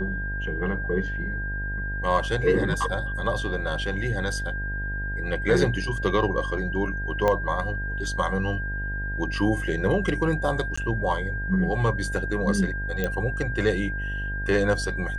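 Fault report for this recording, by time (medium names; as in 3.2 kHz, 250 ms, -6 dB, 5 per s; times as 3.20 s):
buzz 50 Hz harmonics 19 -31 dBFS
whine 1.6 kHz -31 dBFS
7.28 s: pop -11 dBFS
10.76–10.78 s: dropout 15 ms
13.04 s: pop -13 dBFS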